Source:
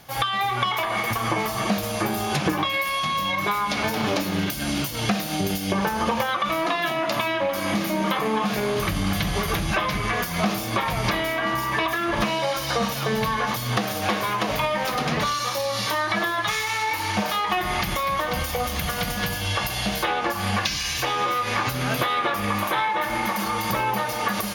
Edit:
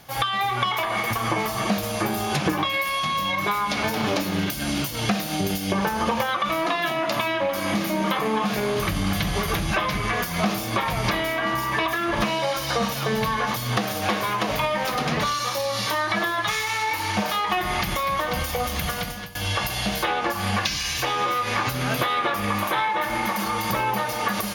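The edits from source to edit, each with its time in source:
18.89–19.35 fade out, to -20.5 dB

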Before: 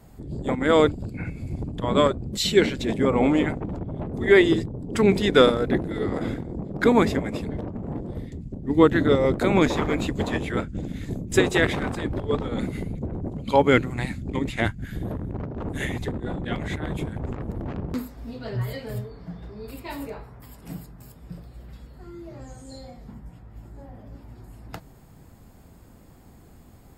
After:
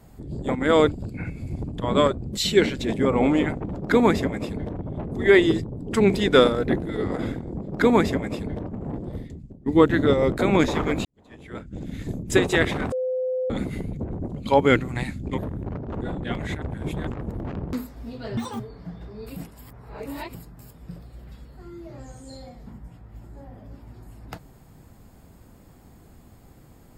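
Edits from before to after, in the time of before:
6.7–7.68 copy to 3.78
8.2–8.68 fade out, to -17 dB
10.07–10.98 fade in quadratic
11.94–12.52 bleep 512 Hz -22.5 dBFS
14.4–15.06 cut
15.7–16.23 cut
16.83–17.28 reverse
18.58–19.01 speed 190%
19.78–20.76 reverse

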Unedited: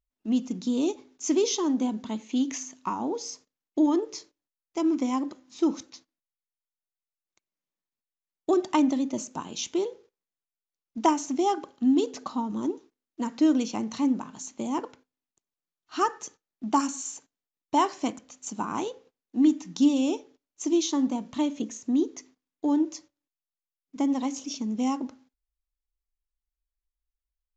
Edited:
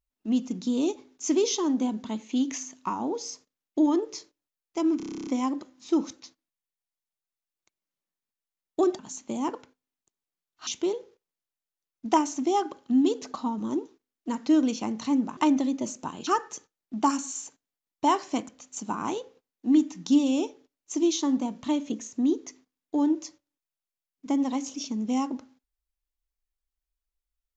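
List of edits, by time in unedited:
4.97 stutter 0.03 s, 11 plays
8.69–9.59 swap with 14.29–15.97

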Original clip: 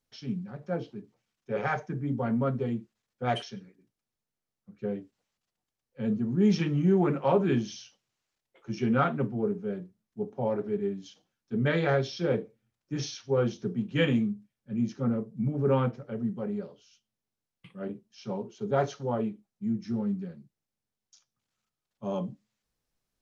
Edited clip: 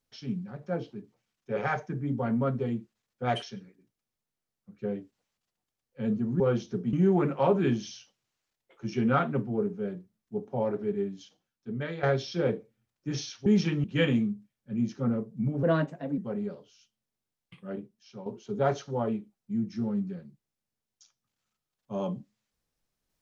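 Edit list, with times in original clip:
6.4–6.78 swap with 13.31–13.84
10.89–11.88 fade out, to -12 dB
15.63–16.3 speed 122%
17.78–18.38 fade out, to -11 dB

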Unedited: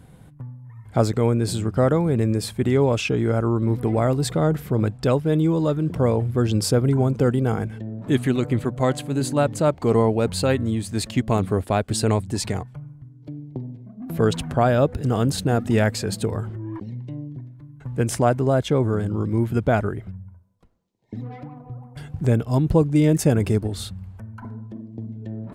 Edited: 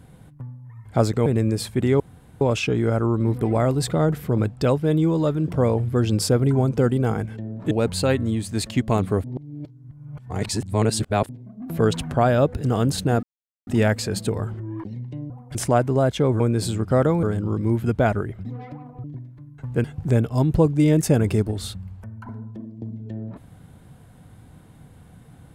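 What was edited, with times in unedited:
1.26–2.09 move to 18.91
2.83 insert room tone 0.41 s
8.13–10.11 cut
11.64–13.69 reverse
15.63 insert silence 0.44 s
17.26–18.06 swap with 21.75–22
20.13–21.16 cut

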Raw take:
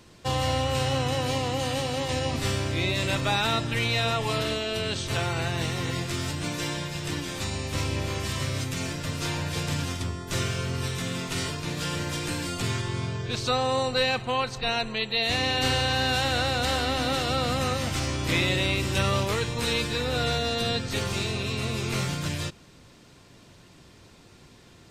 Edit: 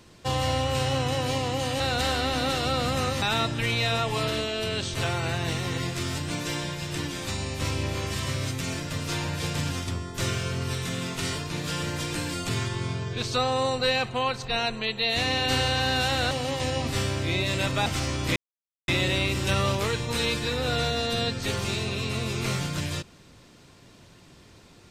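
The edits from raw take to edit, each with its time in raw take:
1.8–3.35 swap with 16.44–17.86
18.36 insert silence 0.52 s

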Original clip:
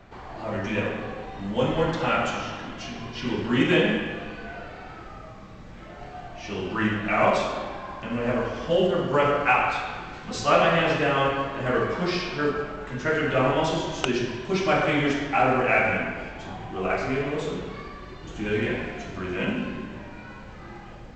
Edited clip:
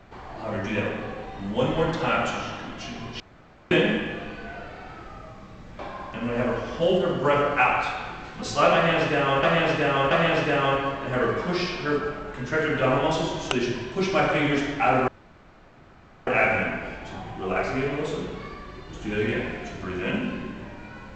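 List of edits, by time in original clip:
3.2–3.71 room tone
5.79–7.68 cut
10.64–11.32 loop, 3 plays
15.61 insert room tone 1.19 s

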